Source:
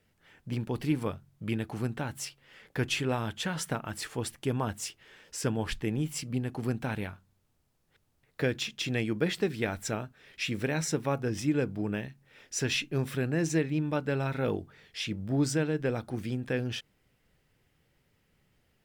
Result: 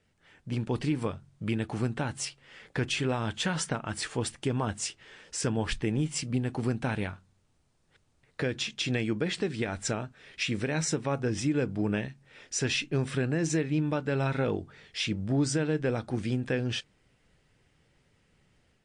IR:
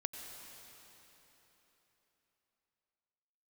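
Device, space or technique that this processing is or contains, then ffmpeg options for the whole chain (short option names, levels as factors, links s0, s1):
low-bitrate web radio: -af "dynaudnorm=f=390:g=3:m=1.58,alimiter=limit=0.119:level=0:latency=1:release=163" -ar 22050 -c:a libmp3lame -b:a 48k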